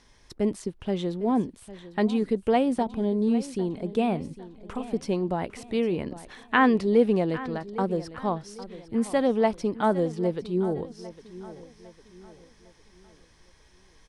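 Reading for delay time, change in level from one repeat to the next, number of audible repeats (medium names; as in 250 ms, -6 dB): 804 ms, -8.0 dB, 3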